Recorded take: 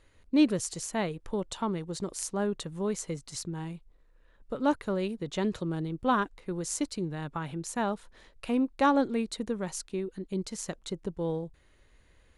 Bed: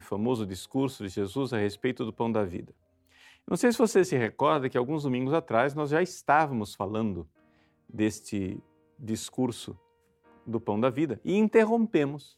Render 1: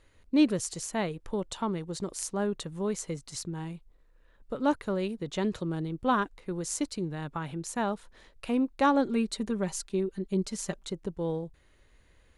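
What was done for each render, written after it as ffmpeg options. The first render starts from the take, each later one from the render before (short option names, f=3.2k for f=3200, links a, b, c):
-filter_complex "[0:a]asettb=1/sr,asplit=3[a][b][c];[a]atrim=end=9.064[d];[b]atrim=start=9.06:end=10.86,asetpts=PTS-STARTPTS,afade=t=in:d=0.004:c=qsin,afade=t=out:st=1.796:d=0.004:c=qsin,aecho=1:1:5.1:0.65,atrim=end_sample=79380[e];[c]atrim=start=10.856[f];[d][e]acrossfade=d=0.004:c1=hsin:c2=qsin[g];[g][f]acrossfade=d=0.004:c1=qsin:c2=hsin"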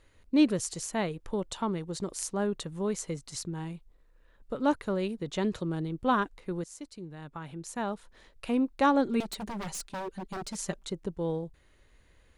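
-filter_complex "[0:a]asettb=1/sr,asplit=3[a][b][c];[a]atrim=end=9.204[d];[b]atrim=start=9.2:end=10.57,asetpts=PTS-STARTPTS,afade=t=in:d=0.004:c=qsin,afade=t=out:st=1.366:d=0.004:c=qsin,aeval=exprs='0.0282*(abs(mod(val(0)/0.0282+3,4)-2)-1)':c=same[e];[c]atrim=start=10.566[f];[d][e]acrossfade=d=0.004:c1=hsin:c2=qsin[g];[g][f]acrossfade=d=0.004:c1=qsin:c2=hsin,asplit=2[h][i];[h]atrim=end=6.64,asetpts=PTS-STARTPTS,afade=t=out:st=6.636:d=0.004:c=hsin:silence=0.158489[j];[i]atrim=start=6.64,asetpts=PTS-STARTPTS,afade=t=in:d=1.87:silence=0.158489[k];[j][k]concat=n=2:v=0:a=1"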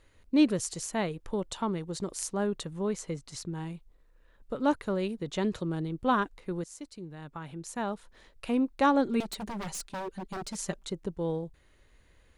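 -filter_complex "[0:a]asettb=1/sr,asplit=3[a][b][c];[a]atrim=end=2.734[d];[b]atrim=start=2.73:end=3.48,asetpts=PTS-STARTPTS,afade=t=in:d=0.004:c=qsin,afade=t=out:st=0.746:d=0.004:c=qsin,highshelf=f=6.2k:g=-7[e];[c]atrim=start=3.476[f];[d][e]acrossfade=d=0.004:c1=hsin:c2=qsin[g];[g][f]acrossfade=d=0.004:c1=qsin:c2=hsin"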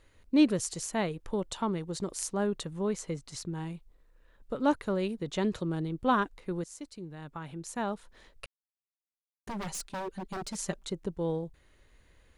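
-filter_complex "[0:a]asplit=3[a][b][c];[a]atrim=end=8.46,asetpts=PTS-STARTPTS,afade=t=out:st=8.456:d=0.004:c=hsin[d];[b]atrim=start=8.46:end=9.47,asetpts=PTS-STARTPTS,volume=0[e];[c]atrim=start=9.47,asetpts=PTS-STARTPTS,afade=t=in:d=0.004:c=hsin[f];[d][e][f]concat=n=3:v=0:a=1"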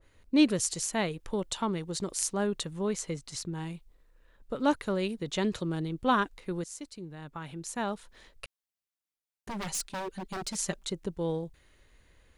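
-af "adynamicequalizer=threshold=0.00398:dfrequency=1700:dqfactor=0.7:tfrequency=1700:tqfactor=0.7:attack=5:release=100:ratio=0.375:range=2.5:mode=boostabove:tftype=highshelf"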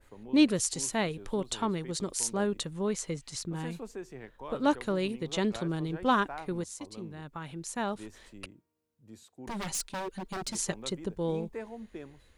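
-filter_complex "[1:a]volume=-19dB[a];[0:a][a]amix=inputs=2:normalize=0"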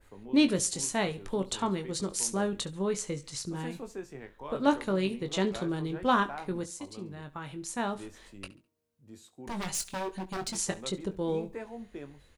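-filter_complex "[0:a]asplit=2[a][b];[b]adelay=21,volume=-8dB[c];[a][c]amix=inputs=2:normalize=0,aecho=1:1:69|138|207:0.106|0.0339|0.0108"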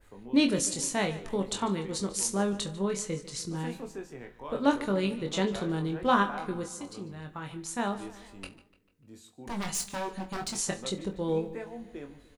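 -filter_complex "[0:a]asplit=2[a][b];[b]adelay=25,volume=-7.5dB[c];[a][c]amix=inputs=2:normalize=0,asplit=2[d][e];[e]adelay=148,lowpass=f=4.6k:p=1,volume=-16.5dB,asplit=2[f][g];[g]adelay=148,lowpass=f=4.6k:p=1,volume=0.54,asplit=2[h][i];[i]adelay=148,lowpass=f=4.6k:p=1,volume=0.54,asplit=2[j][k];[k]adelay=148,lowpass=f=4.6k:p=1,volume=0.54,asplit=2[l][m];[m]adelay=148,lowpass=f=4.6k:p=1,volume=0.54[n];[d][f][h][j][l][n]amix=inputs=6:normalize=0"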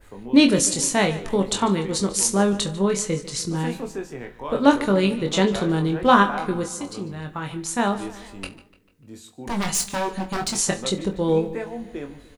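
-af "volume=9dB"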